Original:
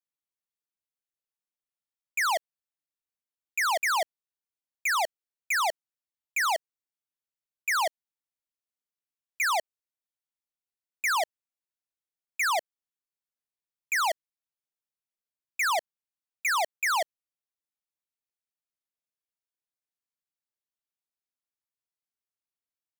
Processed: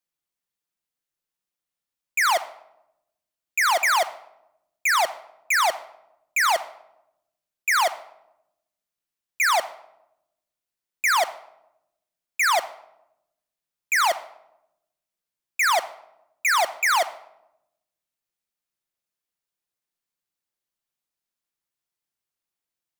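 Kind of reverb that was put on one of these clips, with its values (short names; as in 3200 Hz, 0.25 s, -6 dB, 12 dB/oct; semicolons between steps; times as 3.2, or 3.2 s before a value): shoebox room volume 2700 m³, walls furnished, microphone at 0.87 m; gain +5.5 dB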